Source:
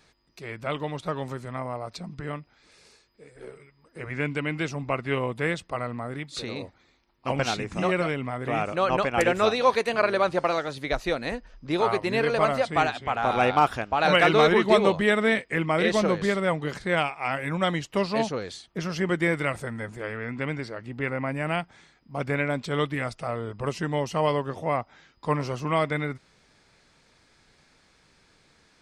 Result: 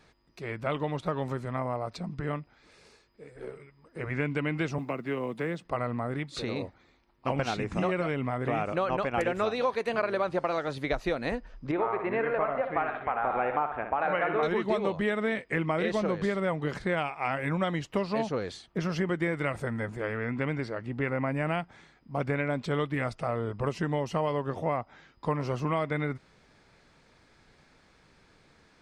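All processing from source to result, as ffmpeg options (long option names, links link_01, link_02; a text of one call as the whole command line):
ffmpeg -i in.wav -filter_complex "[0:a]asettb=1/sr,asplit=3[link_01][link_02][link_03];[link_01]atrim=end=4.784[link_04];[link_02]atrim=start=4.78:end=5.65,asetpts=PTS-STARTPTS,afade=type=in:duration=0.004:curve=qsin,afade=type=out:start_time=0.866:duration=0.004:curve=qsin,acrossover=split=410|1700[link_05][link_06][link_07];[link_05]acompressor=threshold=-31dB:ratio=4[link_08];[link_06]acompressor=threshold=-38dB:ratio=4[link_09];[link_07]acompressor=threshold=-42dB:ratio=4[link_10];[link_08][link_09][link_10]amix=inputs=3:normalize=0,acrusher=bits=9:mode=log:mix=0:aa=0.000001,highpass=frequency=160:width=0.5412,highpass=frequency=160:width=1.3066[link_11];[link_03]atrim=start=5.646[link_12];[link_04][link_11]acrossfade=duration=0.004:curve1=hsin:curve2=qsin[link_13];[link_13][link_12]acrossfade=duration=0.004:curve1=qsin:curve2=hsin,asettb=1/sr,asplit=3[link_14][link_15][link_16];[link_14]atrim=end=11.714[link_17];[link_15]atrim=start=11.71:end=14.43,asetpts=PTS-STARTPTS,afade=type=in:duration=0.004:curve=qsin,afade=type=out:start_time=2.716:duration=0.004:curve=qsin,lowpass=frequency=2200:width=0.5412,lowpass=frequency=2200:width=1.3066,equalizer=frequency=110:width=0.5:gain=-10.5,aecho=1:1:62|124|186|248|310:0.335|0.144|0.0619|0.0266|0.0115,atrim=end_sample=119952[link_18];[link_16]atrim=start=14.426[link_19];[link_17][link_18]acrossfade=duration=0.004:curve1=hsin:curve2=qsin[link_20];[link_20][link_19]acrossfade=duration=0.004:curve1=qsin:curve2=hsin,highshelf=frequency=3100:gain=-9,acompressor=threshold=-27dB:ratio=5,volume=2dB" out.wav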